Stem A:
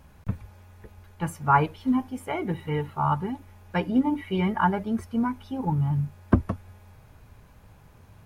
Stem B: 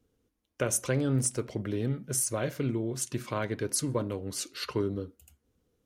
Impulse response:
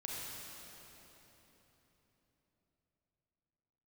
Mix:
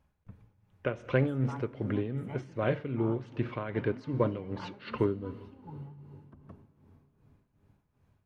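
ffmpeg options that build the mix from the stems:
-filter_complex "[0:a]alimiter=limit=-16.5dB:level=0:latency=1:release=326,volume=-19dB,asplit=2[link_01][link_02];[link_02]volume=-8dB[link_03];[1:a]lowpass=frequency=3100:width=0.5412,lowpass=frequency=3100:width=1.3066,adelay=250,volume=2.5dB,asplit=2[link_04][link_05];[link_05]volume=-16dB[link_06];[2:a]atrim=start_sample=2205[link_07];[link_03][link_06]amix=inputs=2:normalize=0[link_08];[link_08][link_07]afir=irnorm=-1:irlink=0[link_09];[link_01][link_04][link_09]amix=inputs=3:normalize=0,highshelf=frequency=6600:gain=-7.5,tremolo=f=2.6:d=0.69"

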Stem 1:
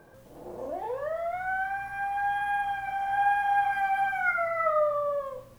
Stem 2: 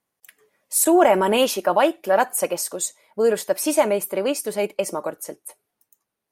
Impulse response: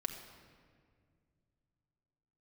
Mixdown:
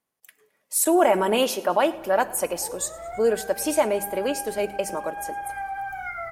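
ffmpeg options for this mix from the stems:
-filter_complex "[0:a]equalizer=frequency=67:width=0.48:gain=9.5,aecho=1:1:2.4:0.46,acompressor=threshold=-25dB:ratio=6,adelay=1800,volume=-6dB,asplit=2[link_01][link_02];[link_02]volume=-6.5dB[link_03];[1:a]bandreject=frequency=50:width_type=h:width=6,bandreject=frequency=100:width_type=h:width=6,bandreject=frequency=150:width_type=h:width=6,bandreject=frequency=200:width_type=h:width=6,volume=-5dB,asplit=4[link_04][link_05][link_06][link_07];[link_05]volume=-10.5dB[link_08];[link_06]volume=-20.5dB[link_09];[link_07]apad=whole_len=325941[link_10];[link_01][link_10]sidechaincompress=threshold=-35dB:ratio=8:attack=16:release=317[link_11];[2:a]atrim=start_sample=2205[link_12];[link_03][link_08]amix=inputs=2:normalize=0[link_13];[link_13][link_12]afir=irnorm=-1:irlink=0[link_14];[link_09]aecho=0:1:108|216|324|432|540|648|756|864|972:1|0.58|0.336|0.195|0.113|0.0656|0.0381|0.0221|0.0128[link_15];[link_11][link_04][link_14][link_15]amix=inputs=4:normalize=0"

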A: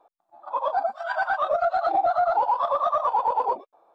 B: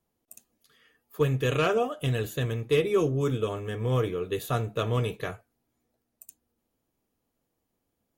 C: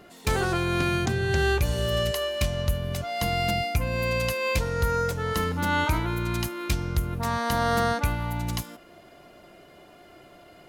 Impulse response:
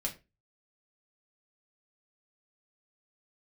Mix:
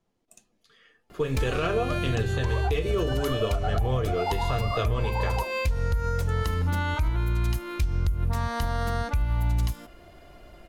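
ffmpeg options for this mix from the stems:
-filter_complex "[0:a]adelay=1900,volume=-2dB[link_01];[1:a]lowpass=6100,volume=0dB,asplit=3[link_02][link_03][link_04];[link_03]volume=-5.5dB[link_05];[2:a]bass=frequency=250:gain=5,treble=frequency=4000:gain=-1,acompressor=threshold=-22dB:ratio=6,adelay=1100,volume=-1dB[link_06];[link_04]apad=whole_len=257767[link_07];[link_01][link_07]sidechaincompress=threshold=-34dB:ratio=8:attack=16:release=258[link_08];[3:a]atrim=start_sample=2205[link_09];[link_05][link_09]afir=irnorm=-1:irlink=0[link_10];[link_08][link_02][link_06][link_10]amix=inputs=4:normalize=0,asubboost=boost=6:cutoff=65,alimiter=limit=-16.5dB:level=0:latency=1:release=163"

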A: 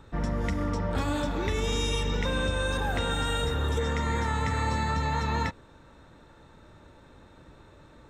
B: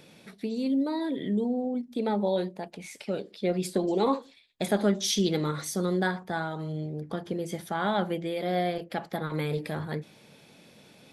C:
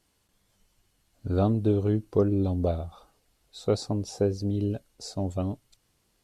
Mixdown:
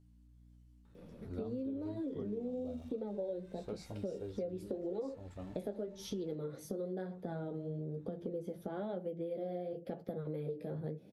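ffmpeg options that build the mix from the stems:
ffmpeg -i stem1.wav -i stem2.wav -i stem3.wav -filter_complex "[0:a]acompressor=threshold=-33dB:ratio=6,aeval=exprs='(tanh(158*val(0)+0.6)-tanh(0.6))/158':channel_layout=same,adelay=850,volume=-13dB[link_01];[1:a]equalizer=frequency=520:width_type=o:width=0.72:gain=3.5,acrossover=split=330[link_02][link_03];[link_02]acompressor=threshold=-37dB:ratio=6[link_04];[link_04][link_03]amix=inputs=2:normalize=0,equalizer=frequency=125:width_type=o:width=1:gain=11,equalizer=frequency=250:width_type=o:width=1:gain=6,equalizer=frequency=500:width_type=o:width=1:gain=9,equalizer=frequency=1000:width_type=o:width=1:gain=-10,equalizer=frequency=2000:width_type=o:width=1:gain=-7,equalizer=frequency=4000:width_type=o:width=1:gain=-6,equalizer=frequency=8000:width_type=o:width=1:gain=-12,adelay=950,volume=-5dB[link_05];[2:a]aeval=exprs='val(0)+0.00631*(sin(2*PI*60*n/s)+sin(2*PI*2*60*n/s)/2+sin(2*PI*3*60*n/s)/3+sin(2*PI*4*60*n/s)/4+sin(2*PI*5*60*n/s)/5)':channel_layout=same,volume=-13dB[link_06];[link_01][link_05][link_06]amix=inputs=3:normalize=0,flanger=delay=9.8:depth=7:regen=-30:speed=0.99:shape=triangular,acompressor=threshold=-37dB:ratio=6" out.wav

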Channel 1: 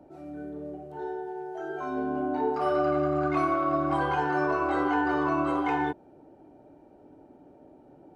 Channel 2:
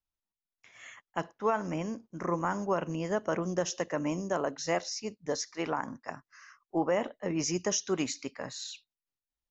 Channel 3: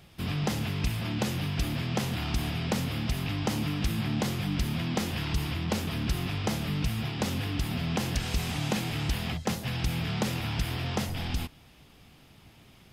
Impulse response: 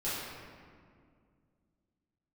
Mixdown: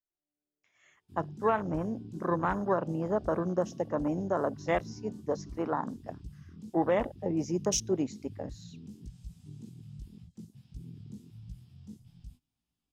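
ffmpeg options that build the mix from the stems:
-filter_complex "[0:a]acompressor=threshold=-30dB:ratio=6,volume=-18dB[link_01];[1:a]volume=1.5dB,asplit=2[link_02][link_03];[2:a]flanger=delay=17:depth=3.3:speed=1.7,equalizer=frequency=250:width_type=o:width=1:gain=5,equalizer=frequency=500:width_type=o:width=1:gain=-7,equalizer=frequency=2000:width_type=o:width=1:gain=-6,equalizer=frequency=8000:width_type=o:width=1:gain=8,acrossover=split=350|3000[link_04][link_05][link_06];[link_05]acompressor=threshold=-55dB:ratio=2[link_07];[link_04][link_07][link_06]amix=inputs=3:normalize=0,adelay=900,volume=-13dB[link_08];[link_03]apad=whole_len=359642[link_09];[link_01][link_09]sidechaingate=range=-22dB:threshold=-47dB:ratio=16:detection=peak[link_10];[link_10][link_02][link_08]amix=inputs=3:normalize=0,afwtdn=0.02"

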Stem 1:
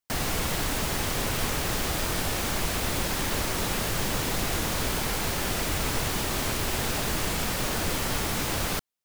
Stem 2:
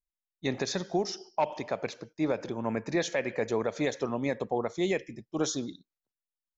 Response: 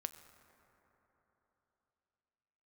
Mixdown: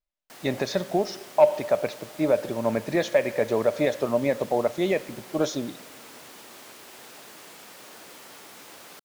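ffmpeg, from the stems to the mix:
-filter_complex "[0:a]highpass=310,adelay=200,volume=-16dB[link_01];[1:a]lowpass=4700,equalizer=frequency=600:width=7.2:gain=12.5,volume=0.5dB,asplit=2[link_02][link_03];[link_03]volume=-5.5dB[link_04];[2:a]atrim=start_sample=2205[link_05];[link_04][link_05]afir=irnorm=-1:irlink=0[link_06];[link_01][link_02][link_06]amix=inputs=3:normalize=0"

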